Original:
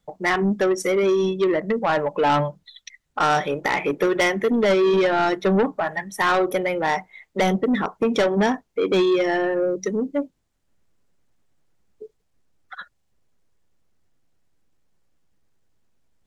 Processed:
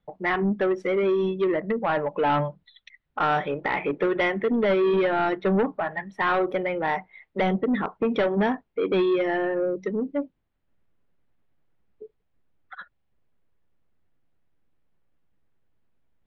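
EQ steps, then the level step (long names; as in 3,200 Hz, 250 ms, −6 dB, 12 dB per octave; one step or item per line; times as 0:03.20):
low-pass filter 5,800 Hz 12 dB per octave
high-frequency loss of the air 470 metres
high-shelf EQ 2,700 Hz +9.5 dB
−2.5 dB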